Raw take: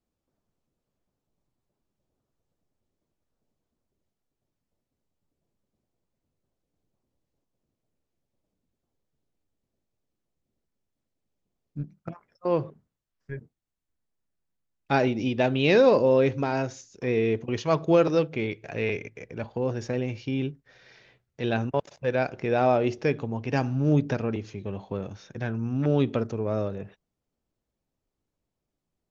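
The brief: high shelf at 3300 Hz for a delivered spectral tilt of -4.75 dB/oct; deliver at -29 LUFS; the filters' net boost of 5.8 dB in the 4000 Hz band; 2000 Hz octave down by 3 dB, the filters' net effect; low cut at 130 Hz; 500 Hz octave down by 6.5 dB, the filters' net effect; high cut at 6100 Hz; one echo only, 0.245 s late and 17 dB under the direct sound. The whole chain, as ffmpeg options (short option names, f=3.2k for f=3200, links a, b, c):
-af "highpass=130,lowpass=6.1k,equalizer=f=500:t=o:g=-7.5,equalizer=f=2k:t=o:g=-9,highshelf=f=3.3k:g=8.5,equalizer=f=4k:t=o:g=5.5,aecho=1:1:245:0.141,volume=1dB"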